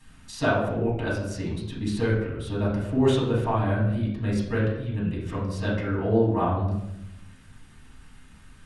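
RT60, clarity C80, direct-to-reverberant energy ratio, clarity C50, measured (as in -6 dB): 0.85 s, 5.5 dB, -7.5 dB, 2.5 dB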